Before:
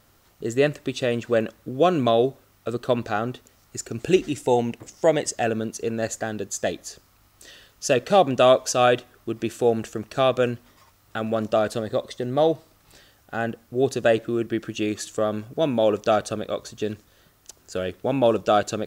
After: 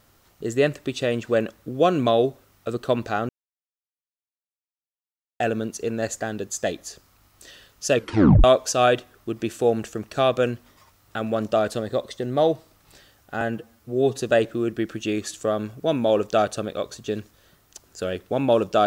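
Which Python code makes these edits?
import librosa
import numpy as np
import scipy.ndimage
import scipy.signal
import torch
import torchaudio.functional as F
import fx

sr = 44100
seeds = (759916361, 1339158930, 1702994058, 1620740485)

y = fx.edit(x, sr, fx.silence(start_s=3.29, length_s=2.11),
    fx.tape_stop(start_s=7.96, length_s=0.48),
    fx.stretch_span(start_s=13.41, length_s=0.53, factor=1.5), tone=tone)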